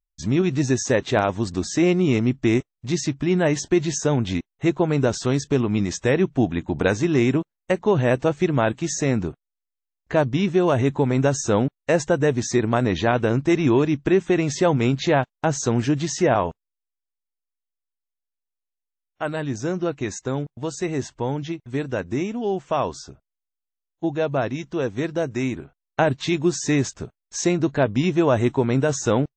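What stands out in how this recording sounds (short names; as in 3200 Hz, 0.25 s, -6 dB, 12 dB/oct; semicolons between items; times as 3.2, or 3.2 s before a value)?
noise floor -85 dBFS; spectral tilt -6.0 dB/oct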